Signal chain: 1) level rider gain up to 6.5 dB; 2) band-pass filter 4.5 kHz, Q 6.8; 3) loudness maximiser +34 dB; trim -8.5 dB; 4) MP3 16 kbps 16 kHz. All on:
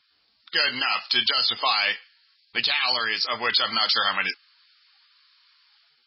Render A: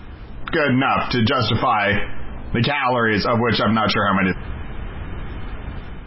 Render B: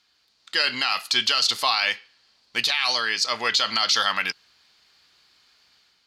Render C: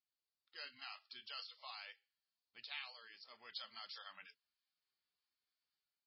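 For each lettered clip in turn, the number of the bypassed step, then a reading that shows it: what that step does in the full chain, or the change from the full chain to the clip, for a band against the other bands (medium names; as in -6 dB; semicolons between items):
2, 250 Hz band +16.5 dB; 4, crest factor change -2.0 dB; 3, crest factor change +6.0 dB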